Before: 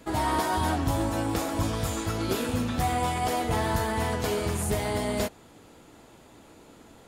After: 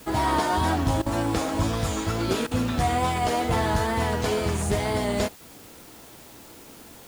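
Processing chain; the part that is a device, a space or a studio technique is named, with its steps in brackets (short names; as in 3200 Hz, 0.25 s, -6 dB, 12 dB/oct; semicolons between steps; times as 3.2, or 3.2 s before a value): worn cassette (LPF 8700 Hz 12 dB/oct; wow and flutter; level dips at 1.02/2.47/5.36, 41 ms -17 dB; white noise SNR 24 dB); gain +3 dB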